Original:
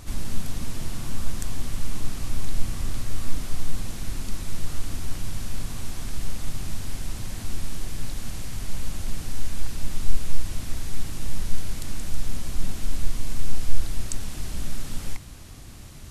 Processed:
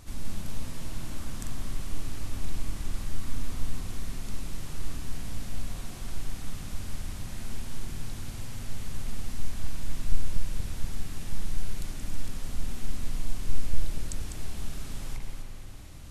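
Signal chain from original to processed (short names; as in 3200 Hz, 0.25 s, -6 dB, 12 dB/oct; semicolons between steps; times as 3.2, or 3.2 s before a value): reverse delay 0.241 s, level -6 dB; spring tank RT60 3 s, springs 52 ms, chirp 50 ms, DRR 3 dB; gain -7 dB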